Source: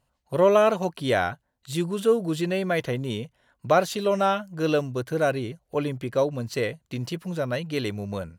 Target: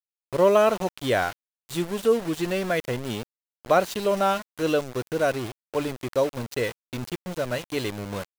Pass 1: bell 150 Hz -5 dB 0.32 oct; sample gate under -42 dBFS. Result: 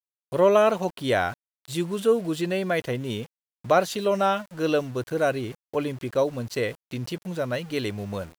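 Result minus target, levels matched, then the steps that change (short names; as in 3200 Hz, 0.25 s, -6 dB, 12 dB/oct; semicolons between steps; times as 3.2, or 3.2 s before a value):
sample gate: distortion -14 dB
change: sample gate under -31 dBFS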